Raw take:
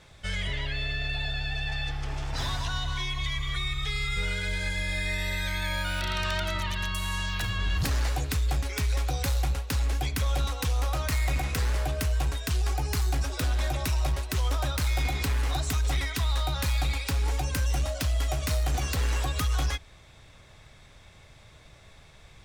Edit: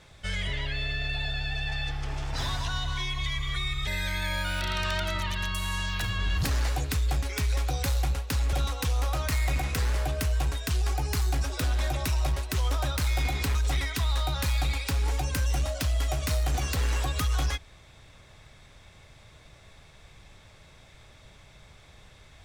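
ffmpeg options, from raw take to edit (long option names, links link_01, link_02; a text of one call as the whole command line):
ffmpeg -i in.wav -filter_complex "[0:a]asplit=4[link_01][link_02][link_03][link_04];[link_01]atrim=end=3.872[link_05];[link_02]atrim=start=5.268:end=9.932[link_06];[link_03]atrim=start=10.328:end=15.352[link_07];[link_04]atrim=start=15.748[link_08];[link_05][link_06]acrossfade=duration=0.004:curve1=hsin:curve2=hsin[link_09];[link_09][link_07]acrossfade=duration=0.004:curve1=hsin:curve2=hsin[link_10];[link_10][link_08]acrossfade=duration=0.004:curve1=hsin:curve2=hsin" out.wav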